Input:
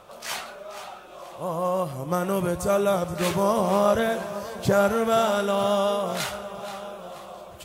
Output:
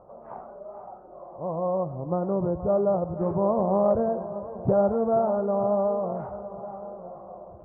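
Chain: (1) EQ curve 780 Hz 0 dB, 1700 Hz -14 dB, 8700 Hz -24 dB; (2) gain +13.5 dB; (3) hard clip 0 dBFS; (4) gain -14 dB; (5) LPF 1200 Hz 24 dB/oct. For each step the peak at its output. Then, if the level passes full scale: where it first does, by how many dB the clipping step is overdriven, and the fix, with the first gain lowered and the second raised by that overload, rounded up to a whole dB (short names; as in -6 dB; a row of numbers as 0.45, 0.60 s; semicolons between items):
-10.5, +3.0, 0.0, -14.0, -13.0 dBFS; step 2, 3.0 dB; step 2 +10.5 dB, step 4 -11 dB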